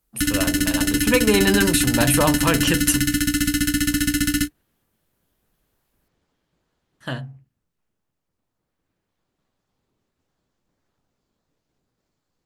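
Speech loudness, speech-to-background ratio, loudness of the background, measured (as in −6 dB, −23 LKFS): −22.0 LKFS, −1.5 dB, −20.5 LKFS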